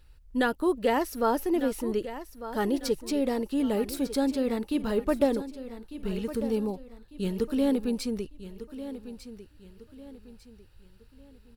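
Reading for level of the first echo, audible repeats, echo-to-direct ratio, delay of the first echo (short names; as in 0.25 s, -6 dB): -13.0 dB, 3, -12.5 dB, 1.199 s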